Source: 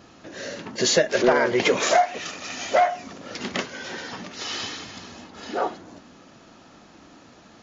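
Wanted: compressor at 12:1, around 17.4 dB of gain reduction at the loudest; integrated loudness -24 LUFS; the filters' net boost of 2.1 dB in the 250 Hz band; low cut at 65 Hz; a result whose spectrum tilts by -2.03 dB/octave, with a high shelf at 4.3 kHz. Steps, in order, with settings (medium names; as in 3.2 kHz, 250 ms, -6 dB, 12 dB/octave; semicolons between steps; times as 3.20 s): high-pass 65 Hz; peaking EQ 250 Hz +3 dB; treble shelf 4.3 kHz +7.5 dB; compression 12:1, threshold -31 dBFS; trim +11 dB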